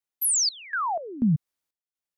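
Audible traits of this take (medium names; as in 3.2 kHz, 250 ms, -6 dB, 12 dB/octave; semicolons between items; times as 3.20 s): random-step tremolo 4.1 Hz, depth 95%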